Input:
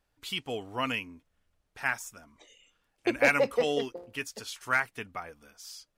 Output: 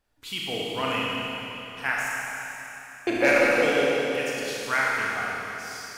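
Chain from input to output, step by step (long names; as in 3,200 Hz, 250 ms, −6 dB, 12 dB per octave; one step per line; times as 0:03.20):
0:02.12–0:03.07: inverse Chebyshev high-pass filter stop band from 1,100 Hz, stop band 70 dB
four-comb reverb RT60 3.5 s, combs from 26 ms, DRR −5 dB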